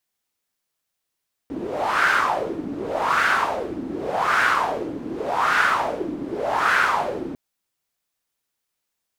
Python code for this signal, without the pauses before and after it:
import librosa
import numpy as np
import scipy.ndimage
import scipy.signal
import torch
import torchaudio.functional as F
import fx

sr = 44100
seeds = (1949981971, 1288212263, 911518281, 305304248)

y = fx.wind(sr, seeds[0], length_s=5.85, low_hz=280.0, high_hz=1500.0, q=4.4, gusts=5, swing_db=12.0)